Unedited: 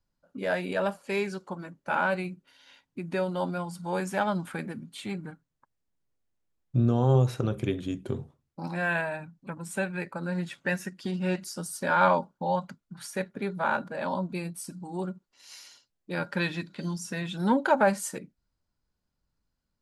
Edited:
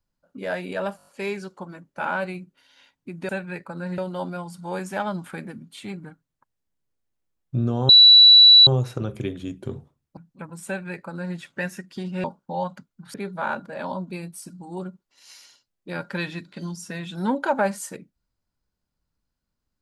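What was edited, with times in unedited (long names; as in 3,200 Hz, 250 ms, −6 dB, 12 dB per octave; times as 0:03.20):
0:00.97: stutter 0.02 s, 6 plays
0:07.10: insert tone 3,940 Hz −7 dBFS 0.78 s
0:08.60–0:09.25: remove
0:09.75–0:10.44: duplicate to 0:03.19
0:11.32–0:12.16: remove
0:13.06–0:13.36: remove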